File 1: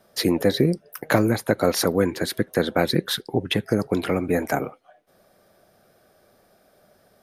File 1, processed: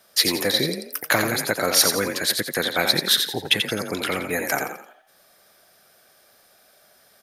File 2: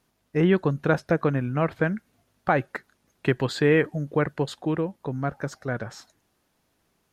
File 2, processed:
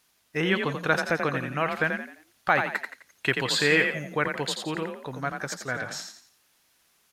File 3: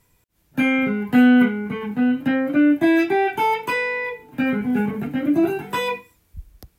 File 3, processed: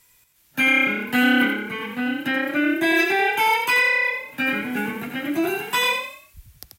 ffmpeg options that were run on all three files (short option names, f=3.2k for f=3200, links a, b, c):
-filter_complex "[0:a]tiltshelf=f=970:g=-9,asplit=5[a][b][c][d][e];[b]adelay=86,afreqshift=33,volume=-6dB[f];[c]adelay=172,afreqshift=66,volume=-14.9dB[g];[d]adelay=258,afreqshift=99,volume=-23.7dB[h];[e]adelay=344,afreqshift=132,volume=-32.6dB[i];[a][f][g][h][i]amix=inputs=5:normalize=0"